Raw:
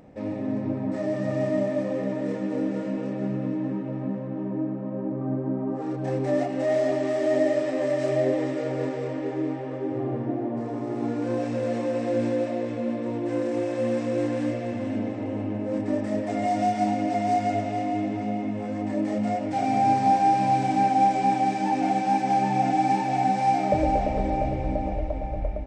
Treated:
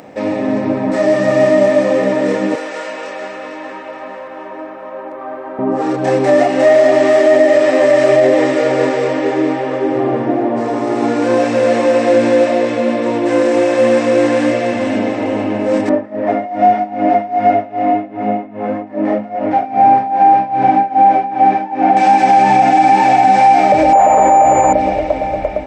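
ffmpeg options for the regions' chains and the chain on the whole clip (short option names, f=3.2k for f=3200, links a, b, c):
-filter_complex "[0:a]asettb=1/sr,asplit=3[a][b][c];[a]atrim=end=2.554[d];[b]atrim=start=2.55:end=5.59,asetpts=PTS-STARTPTS,afade=t=in:d=0.004:c=qsin,afade=t=out:st=3.036:d=0.004:c=qsin,highpass=810,aeval=exprs='val(0)+0.000794*(sin(2*PI*50*n/s)+sin(2*PI*2*50*n/s)/2+sin(2*PI*3*50*n/s)/3+sin(2*PI*4*50*n/s)/4+sin(2*PI*5*50*n/s)/5)':c=same[e];[c]atrim=start=5.586[f];[d][e]acrossfade=d=0.004:c1=hsin:c2=qsin[g];[g][f]acrossfade=d=0.004:c1=qsin:c2=hsin,asettb=1/sr,asplit=3[h][i][j];[h]atrim=end=15.894[k];[i]atrim=start=15.89:end=21.97,asetpts=PTS-STARTPTS,afade=t=in:d=0.004:c=qsin,afade=t=out:st=6.076:d=0.004:c=qsin,lowpass=1.5k,tremolo=f=2.5:d=0.89[l];[j]atrim=start=21.966[m];[k][l]acrossfade=d=0.004:c1=hsin:c2=qsin[n];[n][m]acrossfade=d=0.004:c1=qsin:c2=hsin,asettb=1/sr,asplit=3[o][p][q];[o]atrim=end=23.934[r];[p]atrim=start=23.93:end=24.73,asetpts=PTS-STARTPTS,afade=t=in:d=0.004:c=qsin,afade=t=out:st=0.796:d=0.004:c=qsin,highpass=44,equalizer=f=1k:w=0.97:g=14.5,aeval=exprs='val(0)+0.0355*sin(2*PI*7000*n/s)':c=same[s];[q]atrim=start=24.726[t];[r][s]acrossfade=d=0.004:c1=hsin:c2=qsin[u];[u][t]acrossfade=d=0.004:c1=qsin:c2=hsin,highpass=f=700:p=1,acrossover=split=2800[v][w];[w]acompressor=threshold=-51dB:ratio=4:attack=1:release=60[x];[v][x]amix=inputs=2:normalize=0,alimiter=level_in=21dB:limit=-1dB:release=50:level=0:latency=1,volume=-1dB"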